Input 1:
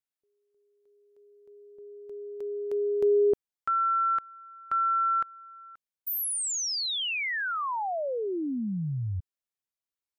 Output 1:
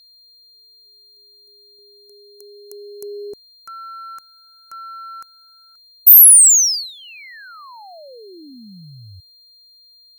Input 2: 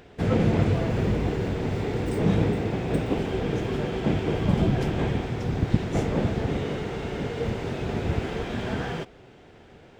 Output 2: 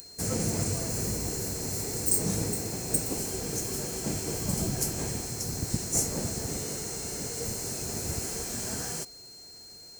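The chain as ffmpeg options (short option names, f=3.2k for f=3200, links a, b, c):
-af "highshelf=f=5.6k:g=7.5,aexciter=amount=12.2:drive=9.1:freq=5.4k,aeval=exprs='val(0)+0.0126*sin(2*PI*4200*n/s)':c=same,volume=-9dB"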